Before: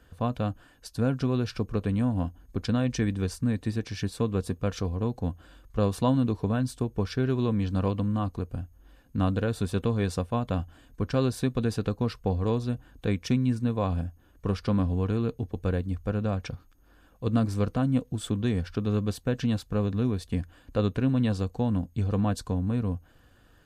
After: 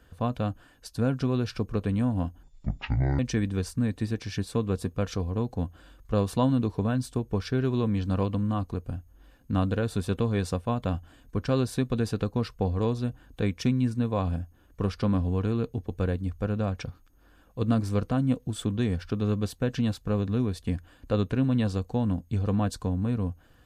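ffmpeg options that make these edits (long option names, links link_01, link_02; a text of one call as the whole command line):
ffmpeg -i in.wav -filter_complex "[0:a]asplit=3[link_01][link_02][link_03];[link_01]atrim=end=2.434[link_04];[link_02]atrim=start=2.43:end=2.84,asetpts=PTS-STARTPTS,asetrate=23814,aresample=44100,atrim=end_sample=33483,asetpts=PTS-STARTPTS[link_05];[link_03]atrim=start=2.836[link_06];[link_04][link_05]acrossfade=duration=0.004:curve1=hsin:curve2=hsin[link_07];[link_07][link_06]acrossfade=duration=0.004:curve1=hsin:curve2=hsin" out.wav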